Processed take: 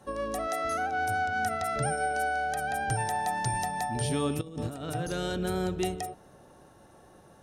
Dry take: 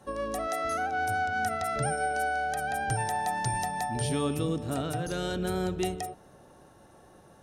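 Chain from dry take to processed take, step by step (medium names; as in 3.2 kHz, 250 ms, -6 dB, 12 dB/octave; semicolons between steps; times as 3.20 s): 4.41–4.95 s: compressor with a negative ratio -35 dBFS, ratio -0.5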